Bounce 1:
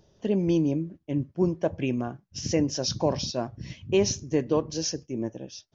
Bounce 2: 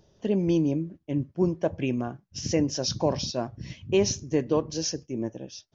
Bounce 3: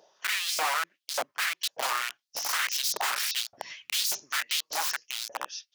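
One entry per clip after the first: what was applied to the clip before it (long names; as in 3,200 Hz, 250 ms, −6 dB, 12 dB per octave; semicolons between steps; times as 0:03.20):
no processing that can be heard
wrap-around overflow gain 27.5 dB; auto-filter high-pass saw up 1.7 Hz 580–5,700 Hz; level +3 dB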